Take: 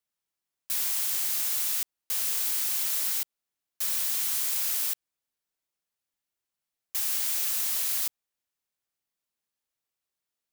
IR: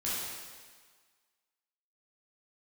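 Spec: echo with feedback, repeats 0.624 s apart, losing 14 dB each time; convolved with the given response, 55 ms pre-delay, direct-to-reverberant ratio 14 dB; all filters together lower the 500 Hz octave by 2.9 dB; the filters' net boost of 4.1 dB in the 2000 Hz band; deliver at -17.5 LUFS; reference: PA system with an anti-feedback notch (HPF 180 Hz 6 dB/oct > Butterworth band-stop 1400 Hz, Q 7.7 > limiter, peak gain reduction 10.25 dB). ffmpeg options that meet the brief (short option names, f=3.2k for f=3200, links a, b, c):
-filter_complex "[0:a]equalizer=f=500:t=o:g=-3.5,equalizer=f=2k:t=o:g=5.5,aecho=1:1:624|1248:0.2|0.0399,asplit=2[a][b];[1:a]atrim=start_sample=2205,adelay=55[c];[b][c]afir=irnorm=-1:irlink=0,volume=-20dB[d];[a][d]amix=inputs=2:normalize=0,highpass=f=180:p=1,asuperstop=centerf=1400:order=8:qfactor=7.7,volume=16dB,alimiter=limit=-9.5dB:level=0:latency=1"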